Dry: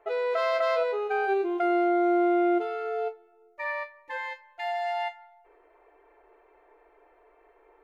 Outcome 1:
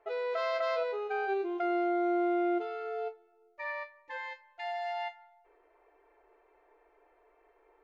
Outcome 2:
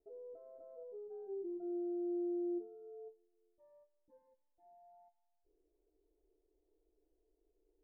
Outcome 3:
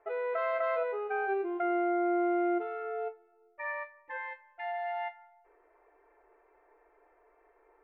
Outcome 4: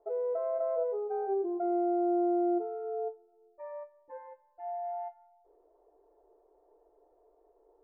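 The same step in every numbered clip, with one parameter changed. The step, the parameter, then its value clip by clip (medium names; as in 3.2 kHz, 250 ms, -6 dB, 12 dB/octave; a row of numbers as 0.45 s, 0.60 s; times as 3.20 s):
four-pole ladder low-pass, frequency: 7.4 kHz, 300 Hz, 2.6 kHz, 830 Hz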